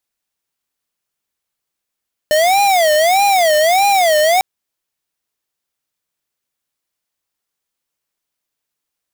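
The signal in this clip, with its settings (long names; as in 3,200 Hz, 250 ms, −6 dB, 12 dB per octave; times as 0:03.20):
siren wail 605–809 Hz 1.6 per second square −12 dBFS 2.10 s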